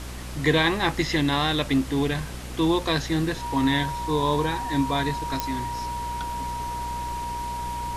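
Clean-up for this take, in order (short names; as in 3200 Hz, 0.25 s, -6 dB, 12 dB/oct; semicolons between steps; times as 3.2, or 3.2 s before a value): de-click; de-hum 61.5 Hz, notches 9; notch 950 Hz, Q 30; denoiser 30 dB, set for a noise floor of -34 dBFS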